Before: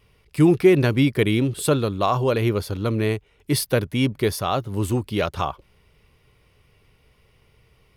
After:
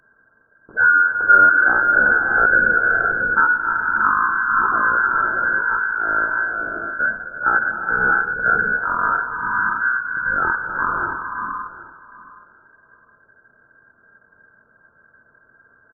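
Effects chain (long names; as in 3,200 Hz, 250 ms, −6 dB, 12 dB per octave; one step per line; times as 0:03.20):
repeating echo 384 ms, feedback 17%, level −16.5 dB
reverb whose tail is shaped and stops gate 350 ms rising, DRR 0 dB
voice inversion scrambler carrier 3,200 Hz
wrong playback speed 15 ips tape played at 7.5 ips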